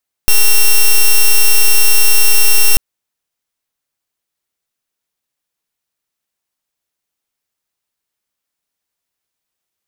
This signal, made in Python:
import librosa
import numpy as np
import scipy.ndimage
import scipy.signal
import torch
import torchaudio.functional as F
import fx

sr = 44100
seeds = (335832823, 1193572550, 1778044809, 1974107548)

y = fx.pulse(sr, length_s=2.49, hz=2730.0, level_db=-6.0, duty_pct=5)